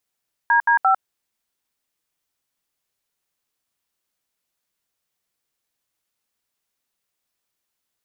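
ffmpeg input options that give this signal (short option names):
-f lavfi -i "aevalsrc='0.168*clip(min(mod(t,0.173),0.101-mod(t,0.173))/0.002,0,1)*(eq(floor(t/0.173),0)*(sin(2*PI*941*mod(t,0.173))+sin(2*PI*1633*mod(t,0.173)))+eq(floor(t/0.173),1)*(sin(2*PI*941*mod(t,0.173))+sin(2*PI*1633*mod(t,0.173)))+eq(floor(t/0.173),2)*(sin(2*PI*770*mod(t,0.173))+sin(2*PI*1336*mod(t,0.173))))':d=0.519:s=44100"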